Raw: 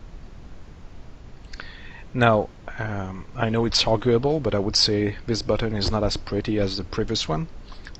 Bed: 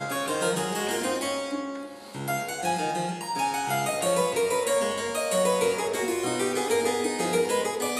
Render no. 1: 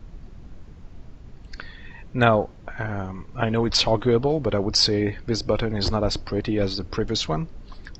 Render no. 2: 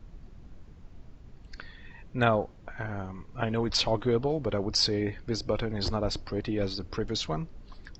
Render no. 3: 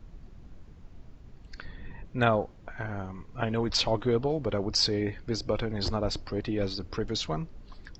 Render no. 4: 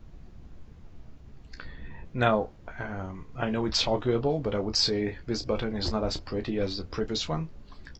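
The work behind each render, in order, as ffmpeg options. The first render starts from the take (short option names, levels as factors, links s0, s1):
-af "afftdn=nr=6:nf=-44"
-af "volume=0.473"
-filter_complex "[0:a]asettb=1/sr,asplit=3[s0][s1][s2];[s0]atrim=end=1.654[s3];[s1]atrim=start=1.65:end=2.05,asetpts=PTS-STARTPTS,afade=t=in:d=0.004:c=qsin,afade=t=out:st=0.396:d=0.004:c=qsin,tiltshelf=f=1500:g=6.5[s4];[s2]atrim=start=2.046[s5];[s3][s4]acrossfade=d=0.004:c1=hsin:c2=qsin[s6];[s6][s5]acrossfade=d=0.004:c1=qsin:c2=hsin"
-af "aecho=1:1:14|32:0.398|0.282"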